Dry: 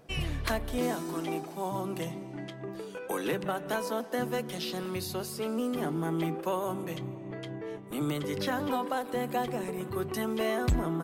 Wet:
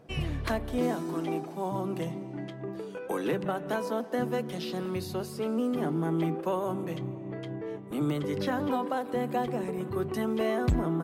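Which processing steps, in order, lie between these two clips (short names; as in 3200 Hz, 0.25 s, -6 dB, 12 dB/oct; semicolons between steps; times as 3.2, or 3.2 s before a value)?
HPF 140 Hz 6 dB/oct; tilt -2 dB/oct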